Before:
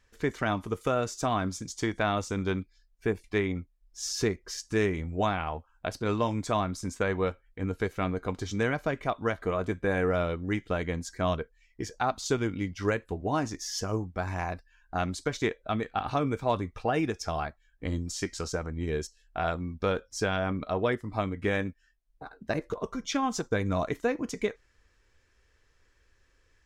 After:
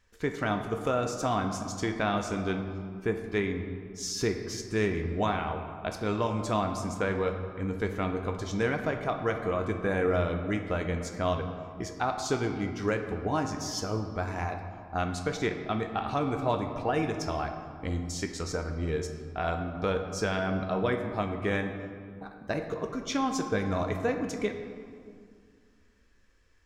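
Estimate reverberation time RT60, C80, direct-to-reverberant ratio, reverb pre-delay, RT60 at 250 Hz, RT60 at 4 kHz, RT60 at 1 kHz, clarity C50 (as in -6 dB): 2.1 s, 8.0 dB, 5.0 dB, 10 ms, 2.6 s, 1.3 s, 2.1 s, 7.0 dB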